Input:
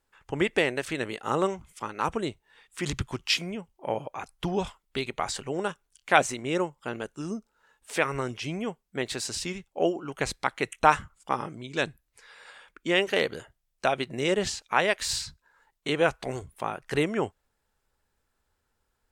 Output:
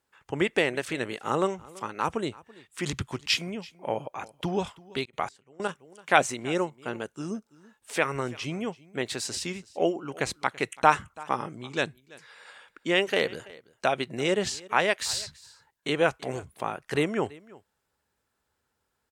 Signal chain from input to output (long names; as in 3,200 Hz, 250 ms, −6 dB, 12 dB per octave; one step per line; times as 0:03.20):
high-pass filter 84 Hz 12 dB per octave
on a send: single-tap delay 333 ms −22 dB
0:05.00–0:05.67: on the sum: gate pattern "x.xx...." 193 BPM −24 dB